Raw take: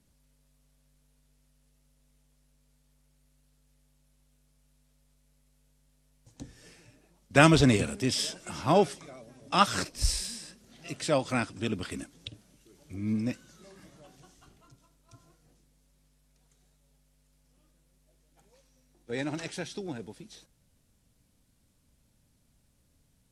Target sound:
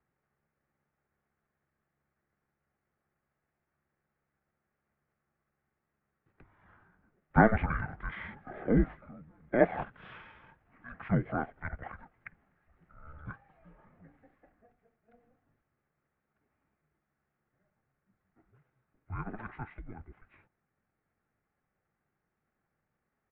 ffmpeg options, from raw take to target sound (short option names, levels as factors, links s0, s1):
-af "asetrate=30296,aresample=44100,atempo=1.45565,highpass=f=300:t=q:w=0.5412,highpass=f=300:t=q:w=1.307,lowpass=f=2100:t=q:w=0.5176,lowpass=f=2100:t=q:w=0.7071,lowpass=f=2100:t=q:w=1.932,afreqshift=-230,bandreject=f=980:w=9.8"